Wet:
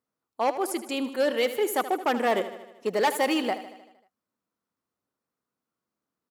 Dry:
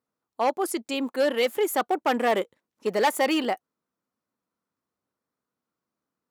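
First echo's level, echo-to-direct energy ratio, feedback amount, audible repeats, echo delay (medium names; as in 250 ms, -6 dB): -13.0 dB, -11.0 dB, 60%, 5, 77 ms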